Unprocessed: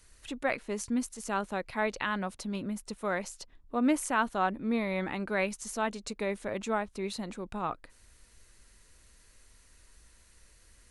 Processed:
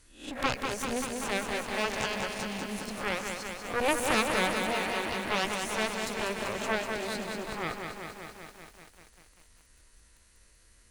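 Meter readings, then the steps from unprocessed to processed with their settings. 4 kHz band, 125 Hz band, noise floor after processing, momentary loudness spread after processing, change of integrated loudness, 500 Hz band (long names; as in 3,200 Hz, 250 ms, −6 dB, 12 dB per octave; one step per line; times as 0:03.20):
+10.0 dB, 0.0 dB, −61 dBFS, 12 LU, +1.5 dB, +1.5 dB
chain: peak hold with a rise ahead of every peak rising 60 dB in 0.42 s
harmonic generator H 3 −6 dB, 4 −9 dB, 7 −28 dB, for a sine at −14 dBFS
feedback echo at a low word length 194 ms, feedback 80%, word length 9 bits, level −5 dB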